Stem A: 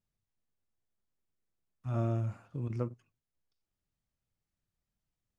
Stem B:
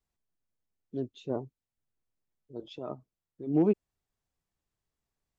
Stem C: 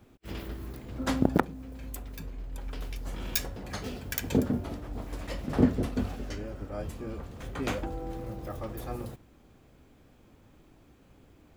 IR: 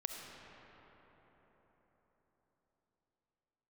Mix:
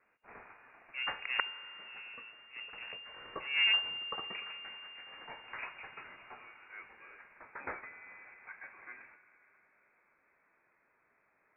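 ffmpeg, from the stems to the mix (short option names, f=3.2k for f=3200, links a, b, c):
-filter_complex "[0:a]volume=-20dB,asplit=2[a][b];[1:a]aeval=exprs='abs(val(0))':c=same,volume=-4.5dB,asplit=2[c][d];[d]volume=-23.5dB[e];[2:a]highpass=1.2k,volume=-3dB,asplit=2[f][g];[g]volume=-7.5dB[h];[b]apad=whole_len=237348[i];[c][i]sidechaincompress=threshold=-54dB:ratio=8:attack=11:release=301[j];[3:a]atrim=start_sample=2205[k];[e][h]amix=inputs=2:normalize=0[l];[l][k]afir=irnorm=-1:irlink=0[m];[a][j][f][m]amix=inputs=4:normalize=0,lowpass=f=2.4k:t=q:w=0.5098,lowpass=f=2.4k:t=q:w=0.6013,lowpass=f=2.4k:t=q:w=0.9,lowpass=f=2.4k:t=q:w=2.563,afreqshift=-2800"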